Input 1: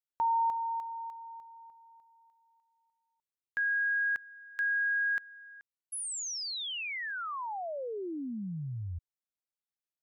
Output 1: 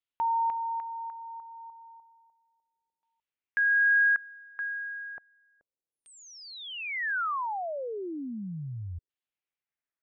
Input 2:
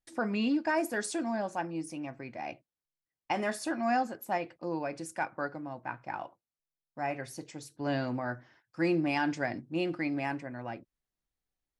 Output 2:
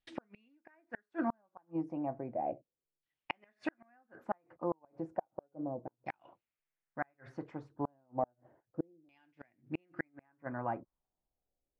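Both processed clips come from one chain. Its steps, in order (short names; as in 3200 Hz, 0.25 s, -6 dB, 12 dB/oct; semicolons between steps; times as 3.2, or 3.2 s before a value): flipped gate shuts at -24 dBFS, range -41 dB; LFO low-pass saw down 0.33 Hz 410–3300 Hz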